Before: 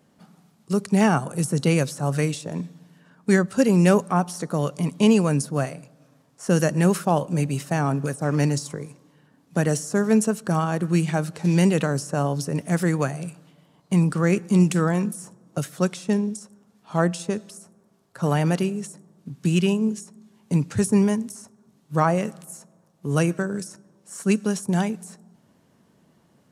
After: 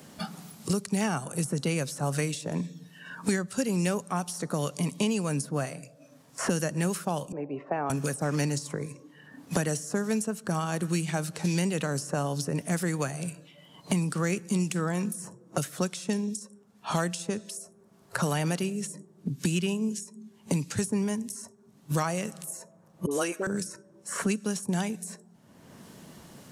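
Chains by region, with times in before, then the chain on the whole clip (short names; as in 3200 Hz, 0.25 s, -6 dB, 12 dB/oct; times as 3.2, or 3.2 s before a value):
7.32–7.9 Butterworth band-pass 590 Hz, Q 0.8 + air absorption 77 m
23.06–23.47 HPF 310 Hz 24 dB/oct + dispersion highs, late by 51 ms, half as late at 920 Hz
whole clip: spectral noise reduction 12 dB; high shelf 2600 Hz +8 dB; three-band squash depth 100%; gain -8 dB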